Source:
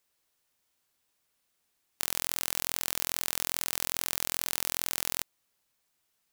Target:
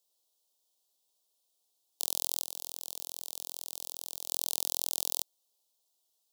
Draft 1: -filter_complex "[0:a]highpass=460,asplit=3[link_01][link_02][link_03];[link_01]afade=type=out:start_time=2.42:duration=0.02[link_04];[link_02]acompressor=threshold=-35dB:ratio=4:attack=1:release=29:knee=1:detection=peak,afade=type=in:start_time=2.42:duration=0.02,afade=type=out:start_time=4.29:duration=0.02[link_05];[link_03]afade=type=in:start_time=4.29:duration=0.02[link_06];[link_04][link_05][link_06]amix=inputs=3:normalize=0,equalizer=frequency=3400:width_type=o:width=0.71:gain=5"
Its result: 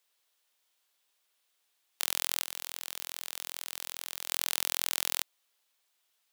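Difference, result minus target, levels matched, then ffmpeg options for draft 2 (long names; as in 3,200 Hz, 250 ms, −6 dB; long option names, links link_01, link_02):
2,000 Hz band +18.5 dB
-filter_complex "[0:a]highpass=460,asplit=3[link_01][link_02][link_03];[link_01]afade=type=out:start_time=2.42:duration=0.02[link_04];[link_02]acompressor=threshold=-35dB:ratio=4:attack=1:release=29:knee=1:detection=peak,afade=type=in:start_time=2.42:duration=0.02,afade=type=out:start_time=4.29:duration=0.02[link_05];[link_03]afade=type=in:start_time=4.29:duration=0.02[link_06];[link_04][link_05][link_06]amix=inputs=3:normalize=0,asuperstop=centerf=1800:order=4:qfactor=0.56,equalizer=frequency=3400:width_type=o:width=0.71:gain=5"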